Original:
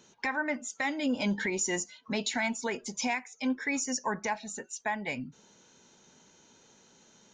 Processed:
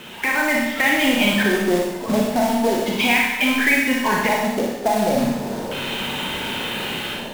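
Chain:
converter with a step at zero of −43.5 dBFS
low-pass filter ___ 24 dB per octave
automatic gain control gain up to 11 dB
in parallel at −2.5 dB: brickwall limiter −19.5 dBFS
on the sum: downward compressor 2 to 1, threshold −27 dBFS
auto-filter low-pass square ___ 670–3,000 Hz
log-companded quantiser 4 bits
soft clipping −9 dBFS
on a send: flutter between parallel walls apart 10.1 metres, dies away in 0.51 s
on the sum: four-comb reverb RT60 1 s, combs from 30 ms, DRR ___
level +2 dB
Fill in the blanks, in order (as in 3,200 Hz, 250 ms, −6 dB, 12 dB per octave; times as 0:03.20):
3,800 Hz, 0.35 Hz, −0.5 dB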